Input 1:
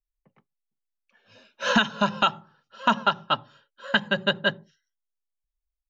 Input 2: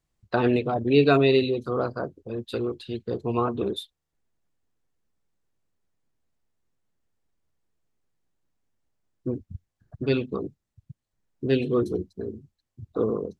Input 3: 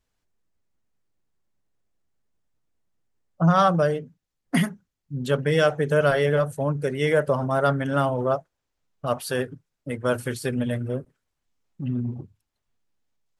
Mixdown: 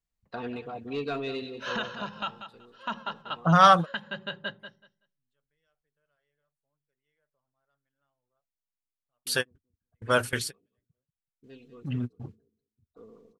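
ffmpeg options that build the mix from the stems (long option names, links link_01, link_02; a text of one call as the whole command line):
ffmpeg -i stem1.wav -i stem2.wav -i stem3.wav -filter_complex "[0:a]lowpass=5000,alimiter=limit=-12.5dB:level=0:latency=1:release=29,volume=-8dB,asplit=2[link_01][link_02];[link_02]volume=-10.5dB[link_03];[1:a]aecho=1:1:4.3:0.4,asoftclip=type=tanh:threshold=-9dB,volume=-10.5dB,afade=type=out:start_time=1.85:duration=0.54:silence=0.223872,asplit=3[link_04][link_05][link_06];[link_05]volume=-13.5dB[link_07];[2:a]equalizer=frequency=2700:width=0.35:gain=8,adelay=50,volume=-0.5dB[link_08];[link_06]apad=whole_len=597153[link_09];[link_08][link_09]sidechaingate=range=-59dB:threshold=-56dB:ratio=16:detection=peak[link_10];[link_03][link_07]amix=inputs=2:normalize=0,aecho=0:1:189|378|567:1|0.17|0.0289[link_11];[link_01][link_04][link_10][link_11]amix=inputs=4:normalize=0,equalizer=frequency=300:width=0.45:gain=-4.5" out.wav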